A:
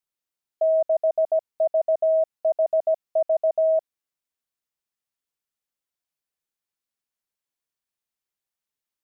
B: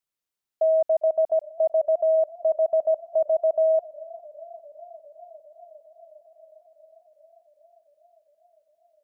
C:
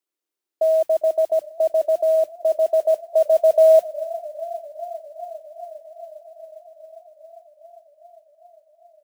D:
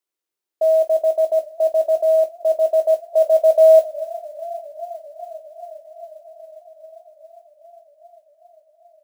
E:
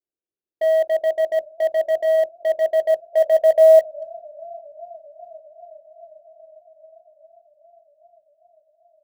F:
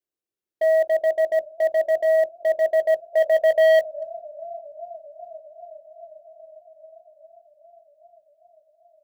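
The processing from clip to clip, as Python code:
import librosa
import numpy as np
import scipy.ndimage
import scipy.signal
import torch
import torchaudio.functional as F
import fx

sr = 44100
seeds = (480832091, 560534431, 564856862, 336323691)

y1 = fx.echo_warbled(x, sr, ms=403, feedback_pct=79, rate_hz=2.8, cents=70, wet_db=-22.5)
y2 = fx.filter_sweep_highpass(y1, sr, from_hz=330.0, to_hz=680.0, start_s=2.38, end_s=4.42, q=4.1)
y2 = fx.mod_noise(y2, sr, seeds[0], snr_db=30)
y3 = fx.peak_eq(y2, sr, hz=280.0, db=-6.0, octaves=0.47)
y3 = fx.room_early_taps(y3, sr, ms=(19, 47), db=(-9.5, -17.5))
y4 = fx.wiener(y3, sr, points=41)
y5 = 10.0 ** (-13.5 / 20.0) * np.tanh(y4 / 10.0 ** (-13.5 / 20.0))
y5 = F.gain(torch.from_numpy(y5), 1.0).numpy()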